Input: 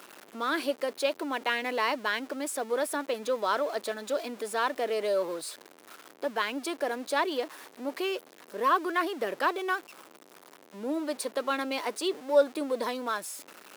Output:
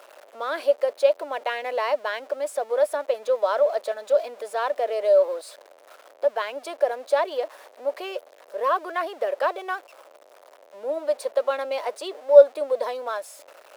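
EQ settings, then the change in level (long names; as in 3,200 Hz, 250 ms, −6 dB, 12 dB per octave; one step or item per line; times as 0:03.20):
high-pass with resonance 580 Hz, resonance Q 4.7
high-shelf EQ 6,700 Hz −4.5 dB
−2.0 dB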